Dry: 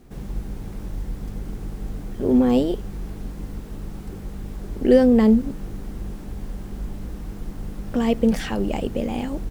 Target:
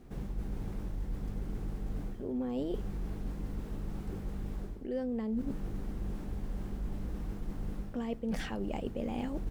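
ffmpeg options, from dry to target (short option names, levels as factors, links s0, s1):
-af "highshelf=f=3600:g=-6,areverse,acompressor=threshold=0.0447:ratio=20,areverse,volume=0.631"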